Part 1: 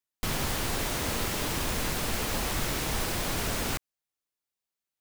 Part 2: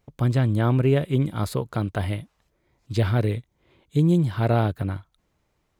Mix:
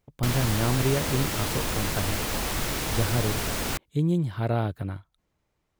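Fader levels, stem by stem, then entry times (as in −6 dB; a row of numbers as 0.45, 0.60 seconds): +1.5, −5.0 decibels; 0.00, 0.00 seconds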